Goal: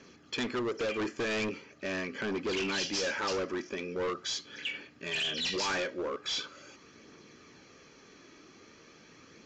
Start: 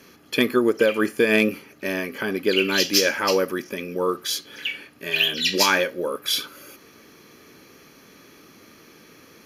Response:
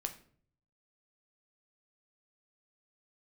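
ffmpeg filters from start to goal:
-af "aphaser=in_gain=1:out_gain=1:delay=3.2:decay=0.27:speed=0.42:type=triangular,volume=23.5dB,asoftclip=hard,volume=-23.5dB,aresample=16000,aresample=44100,volume=-6dB"

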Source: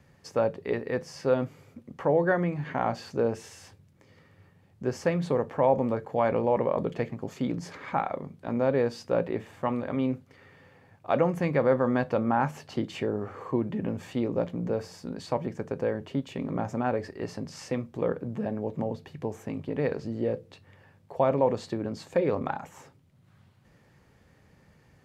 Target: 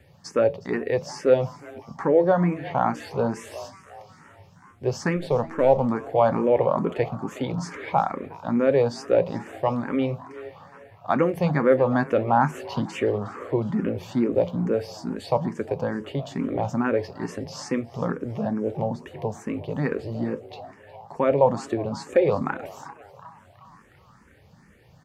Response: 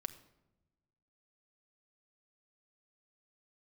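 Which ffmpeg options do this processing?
-filter_complex "[0:a]asettb=1/sr,asplit=3[link_01][link_02][link_03];[link_01]atrim=end=5.164[link_04];[link_02]atrim=start=5.16:end=5.83,asetpts=PTS-STARTPTS,afade=type=in:duration=0.004:curve=qsin,afade=type=out:start_time=0.666:duration=0.004:curve=qsin,aeval=exprs='if(lt(val(0),0),0.708*val(0),val(0))':channel_layout=same[link_05];[link_03]atrim=start=5.826[link_06];[link_04][link_05]acrossfade=duration=0.004:curve1=hsin:curve2=qsin[link_07];[link_07][link_06]acrossfade=duration=0.004:curve1=qsin:curve2=hsin,asplit=6[link_08][link_09][link_10][link_11][link_12][link_13];[link_09]adelay=362,afreqshift=150,volume=-19dB[link_14];[link_10]adelay=724,afreqshift=300,volume=-23.9dB[link_15];[link_11]adelay=1086,afreqshift=450,volume=-28.8dB[link_16];[link_12]adelay=1448,afreqshift=600,volume=-33.6dB[link_17];[link_13]adelay=1810,afreqshift=750,volume=-38.5dB[link_18];[link_08][link_14][link_15][link_16][link_17][link_18]amix=inputs=6:normalize=0,asplit=2[link_19][link_20];[1:a]atrim=start_sample=2205[link_21];[link_20][link_21]afir=irnorm=-1:irlink=0,volume=-13dB[link_22];[link_19][link_22]amix=inputs=2:normalize=0,asplit=2[link_23][link_24];[link_24]afreqshift=2.3[link_25];[link_23][link_25]amix=inputs=2:normalize=1,volume=6dB"

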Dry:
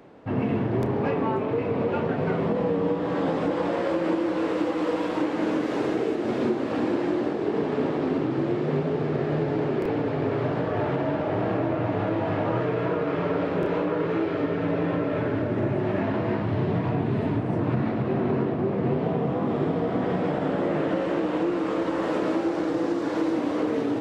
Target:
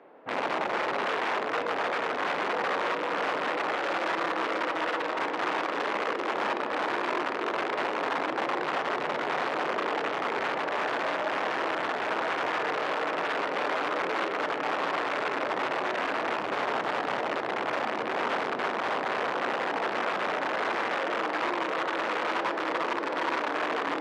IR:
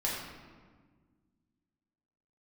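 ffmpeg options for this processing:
-filter_complex "[0:a]aeval=exprs='(mod(10.6*val(0)+1,2)-1)/10.6':channel_layout=same,highpass=460,lowpass=2300,asplit=2[link_01][link_02];[1:a]atrim=start_sample=2205,adelay=25[link_03];[link_02][link_03]afir=irnorm=-1:irlink=0,volume=-17.5dB[link_04];[link_01][link_04]amix=inputs=2:normalize=0"

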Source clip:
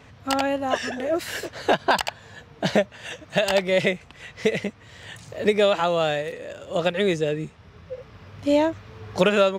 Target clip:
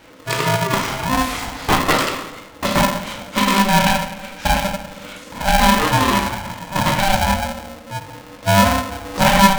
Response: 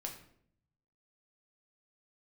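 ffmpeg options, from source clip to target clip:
-filter_complex "[0:a]bandreject=frequency=82.98:width_type=h:width=4,bandreject=frequency=165.96:width_type=h:width=4,bandreject=frequency=248.94:width_type=h:width=4,bandreject=frequency=331.92:width_type=h:width=4,bandreject=frequency=414.9:width_type=h:width=4[link_01];[1:a]atrim=start_sample=2205,asetrate=25137,aresample=44100[link_02];[link_01][link_02]afir=irnorm=-1:irlink=0,aeval=exprs='val(0)*sgn(sin(2*PI*390*n/s))':channel_layout=same,volume=3dB"

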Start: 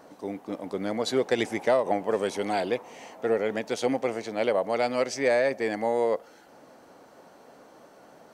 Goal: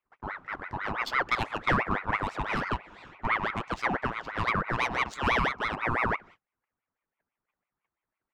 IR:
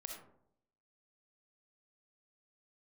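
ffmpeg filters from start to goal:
-af "agate=range=-34dB:threshold=-46dB:ratio=16:detection=peak,adynamicsmooth=sensitivity=3:basefreq=2500,aeval=exprs='val(0)*sin(2*PI*1100*n/s+1100*0.6/6*sin(2*PI*6*n/s))':channel_layout=same"

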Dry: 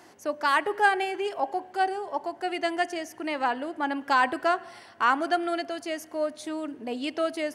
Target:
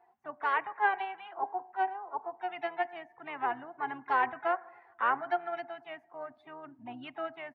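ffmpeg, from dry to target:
ffmpeg -i in.wav -filter_complex "[0:a]firequalizer=gain_entry='entry(100,0);entry(250,-3);entry(410,-30);entry(700,3);entry(2200,-1);entry(3700,-10);entry(5700,-25)':delay=0.05:min_phase=1,afftdn=noise_reduction=18:noise_floor=-47,asplit=3[link_01][link_02][link_03];[link_02]asetrate=22050,aresample=44100,atempo=2,volume=-14dB[link_04];[link_03]asetrate=55563,aresample=44100,atempo=0.793701,volume=-14dB[link_05];[link_01][link_04][link_05]amix=inputs=3:normalize=0,volume=-7.5dB" out.wav

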